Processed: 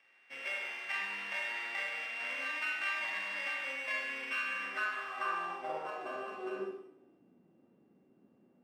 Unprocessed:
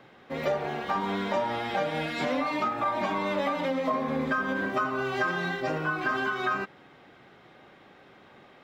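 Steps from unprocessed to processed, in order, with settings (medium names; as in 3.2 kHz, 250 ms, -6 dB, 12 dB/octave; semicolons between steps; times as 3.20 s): sorted samples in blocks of 16 samples; Schroeder reverb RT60 0.84 s, combs from 33 ms, DRR 0 dB; in parallel at -11.5 dB: word length cut 6-bit, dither none; on the sum: band-pass sweep 2.1 kHz -> 240 Hz, 4.48–7.40 s; trim -6 dB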